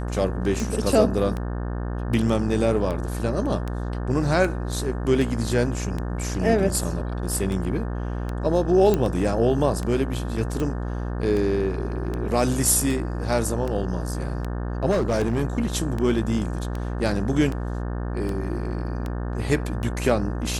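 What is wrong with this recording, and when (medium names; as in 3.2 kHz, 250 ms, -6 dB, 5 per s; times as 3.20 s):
buzz 60 Hz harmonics 30 -28 dBFS
tick 78 rpm
8.94 s: pop -9 dBFS
14.90–15.42 s: clipped -17.5 dBFS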